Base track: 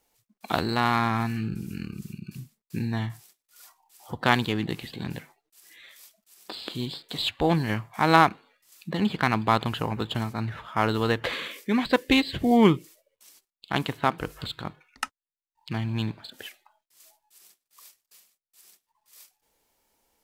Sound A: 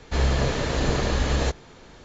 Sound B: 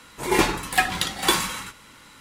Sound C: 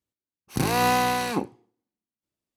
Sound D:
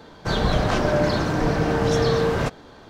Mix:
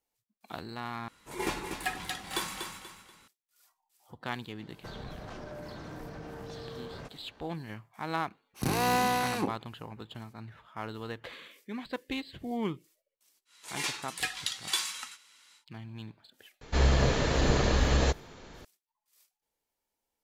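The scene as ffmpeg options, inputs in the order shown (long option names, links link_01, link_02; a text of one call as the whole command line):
ffmpeg -i bed.wav -i cue0.wav -i cue1.wav -i cue2.wav -i cue3.wav -filter_complex "[2:a]asplit=2[link_01][link_02];[0:a]volume=-15dB[link_03];[link_01]aecho=1:1:241|482|723|964:0.447|0.147|0.0486|0.0161[link_04];[4:a]acompressor=threshold=-26dB:ratio=6:attack=3.2:release=140:knee=1:detection=peak[link_05];[3:a]asoftclip=type=hard:threshold=-17.5dB[link_06];[link_02]bandpass=frequency=5400:width_type=q:width=0.75:csg=0[link_07];[link_03]asplit=2[link_08][link_09];[link_08]atrim=end=1.084[link_10];[link_04]atrim=end=2.2,asetpts=PTS-STARTPTS,volume=-13.5dB[link_11];[link_09]atrim=start=3.276[link_12];[link_05]atrim=end=2.89,asetpts=PTS-STARTPTS,volume=-13.5dB,afade=type=in:duration=0.004:curve=hsin,afade=type=out:start_time=2.886:duration=0.004:curve=hsin,adelay=4590[link_13];[link_06]atrim=end=2.56,asetpts=PTS-STARTPTS,volume=-4.5dB,afade=type=in:duration=0.004:curve=hsin,afade=type=out:start_time=2.556:duration=0.004:curve=hsin,adelay=8060[link_14];[link_07]atrim=end=2.2,asetpts=PTS-STARTPTS,volume=-5.5dB,afade=type=in:duration=0.1,afade=type=out:start_time=2.1:duration=0.1,adelay=13450[link_15];[1:a]atrim=end=2.04,asetpts=PTS-STARTPTS,volume=-2dB,afade=type=in:duration=0.004:curve=hsin,afade=type=out:start_time=2.036:duration=0.004:curve=hsin,adelay=16610[link_16];[link_10][link_11]acrossfade=duration=0.004:curve1=hsin:curve2=hsin[link_17];[link_17][link_12]acrossfade=duration=0.004:curve1=hsin:curve2=hsin[link_18];[link_18][link_13][link_14][link_15][link_16]amix=inputs=5:normalize=0" out.wav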